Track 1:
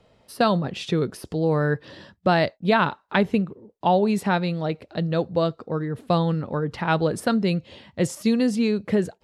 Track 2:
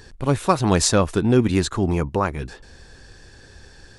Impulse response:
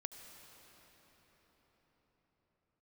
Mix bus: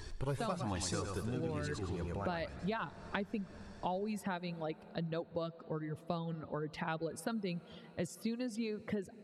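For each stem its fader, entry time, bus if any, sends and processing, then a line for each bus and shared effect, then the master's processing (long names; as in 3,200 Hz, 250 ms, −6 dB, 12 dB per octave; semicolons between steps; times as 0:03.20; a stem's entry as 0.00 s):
−9.0 dB, 0.00 s, send −12.5 dB, no echo send, reverb reduction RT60 1.2 s
+0.5 dB, 0.00 s, send −17 dB, echo send −13.5 dB, flanger whose copies keep moving one way rising 1.2 Hz; automatic ducking −16 dB, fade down 1.75 s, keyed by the first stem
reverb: on, pre-delay 67 ms
echo: repeating echo 110 ms, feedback 32%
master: downward compressor 4 to 1, threshold −36 dBFS, peak gain reduction 14.5 dB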